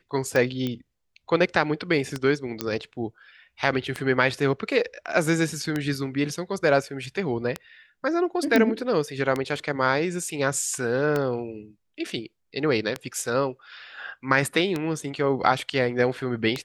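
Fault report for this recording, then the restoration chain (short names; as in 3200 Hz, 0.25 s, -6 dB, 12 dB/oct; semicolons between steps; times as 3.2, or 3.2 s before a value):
tick 33 1/3 rpm -12 dBFS
0.67 pop -16 dBFS
2.61 pop -10 dBFS
8.56 pop -7 dBFS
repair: de-click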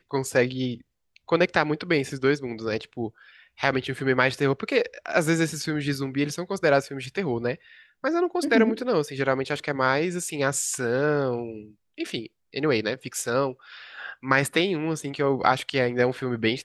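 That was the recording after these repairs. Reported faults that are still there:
none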